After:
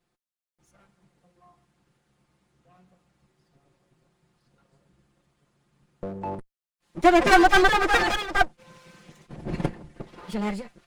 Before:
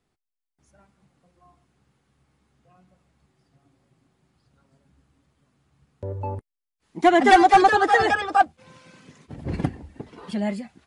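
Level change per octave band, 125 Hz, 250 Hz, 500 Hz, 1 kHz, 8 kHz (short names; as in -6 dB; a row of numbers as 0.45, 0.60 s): -3.0, -1.0, -1.5, -4.5, +2.5 dB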